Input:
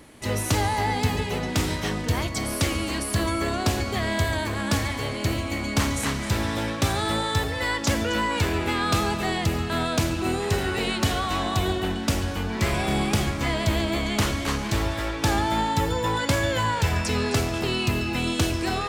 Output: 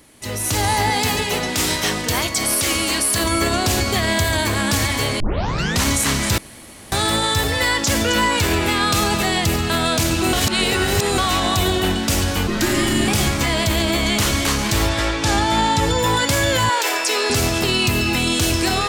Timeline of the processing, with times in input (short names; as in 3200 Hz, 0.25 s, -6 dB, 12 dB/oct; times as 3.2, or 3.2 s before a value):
0.9–3.24 low shelf 210 Hz -9.5 dB
5.2 tape start 0.66 s
6.38–6.92 room tone
10.33–11.18 reverse
12.47–13.08 frequency shift -430 Hz
14.89–15.99 LPF 8300 Hz
16.69–17.3 elliptic high-pass 330 Hz, stop band 60 dB
whole clip: high shelf 3600 Hz +9.5 dB; limiter -15.5 dBFS; AGC gain up to 11 dB; gain -3.5 dB